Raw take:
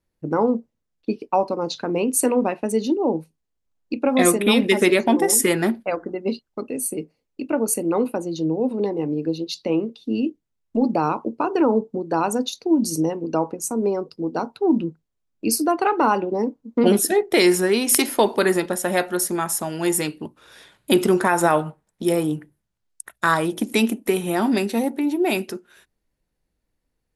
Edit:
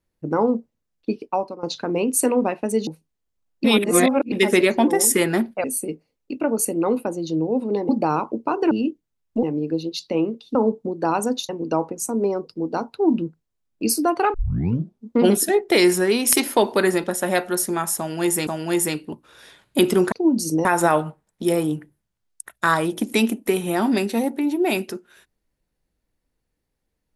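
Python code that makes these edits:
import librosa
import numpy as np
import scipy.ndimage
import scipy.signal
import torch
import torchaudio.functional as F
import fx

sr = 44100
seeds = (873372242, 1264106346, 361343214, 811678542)

y = fx.edit(x, sr, fx.fade_out_to(start_s=1.19, length_s=0.44, floor_db=-15.5),
    fx.cut(start_s=2.87, length_s=0.29),
    fx.reverse_span(start_s=3.93, length_s=0.68),
    fx.cut(start_s=5.93, length_s=0.8),
    fx.swap(start_s=8.98, length_s=1.12, other_s=10.82, other_length_s=0.82),
    fx.move(start_s=12.58, length_s=0.53, to_s=21.25),
    fx.tape_start(start_s=15.96, length_s=0.75),
    fx.repeat(start_s=19.6, length_s=0.49, count=2), tone=tone)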